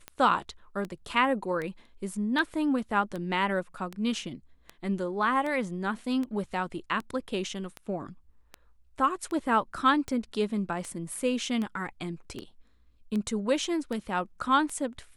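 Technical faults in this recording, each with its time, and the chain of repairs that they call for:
tick 78 rpm -22 dBFS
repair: de-click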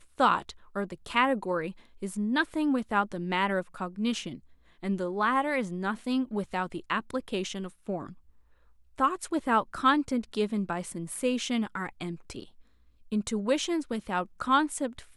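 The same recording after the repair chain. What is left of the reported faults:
none

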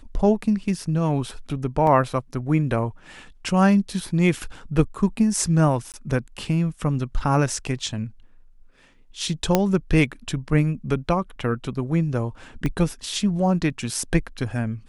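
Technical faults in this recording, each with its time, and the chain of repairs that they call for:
1.87 gap 2.4 ms
5.92–5.94 gap 18 ms
9.55 pop -3 dBFS
12.66 pop -13 dBFS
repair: de-click; interpolate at 1.87, 2.4 ms; interpolate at 5.92, 18 ms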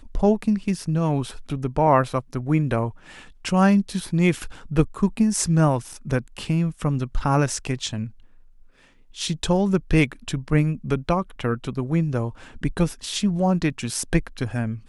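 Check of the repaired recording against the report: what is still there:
12.66 pop

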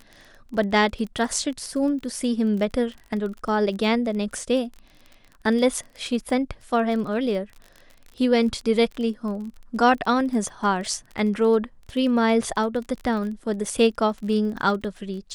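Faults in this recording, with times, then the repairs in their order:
crackle 27/s -32 dBFS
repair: de-click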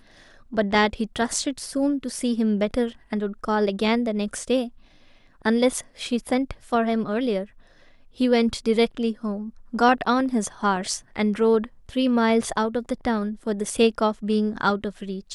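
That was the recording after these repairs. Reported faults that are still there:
none

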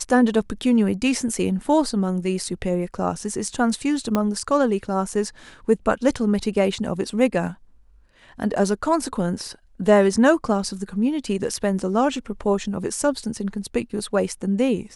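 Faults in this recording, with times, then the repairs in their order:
4.15 pop -8 dBFS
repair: de-click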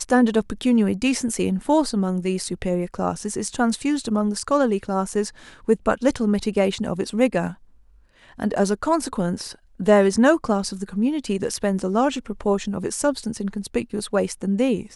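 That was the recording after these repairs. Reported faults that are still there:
4.15 pop

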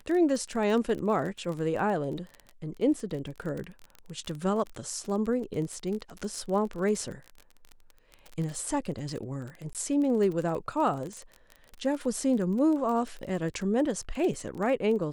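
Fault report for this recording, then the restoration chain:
crackle 25/s -33 dBFS
9.73–9.75 gap 18 ms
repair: de-click; interpolate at 9.73, 18 ms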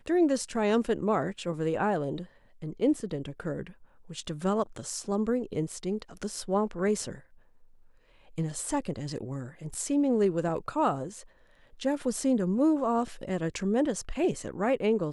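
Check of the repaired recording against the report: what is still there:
none

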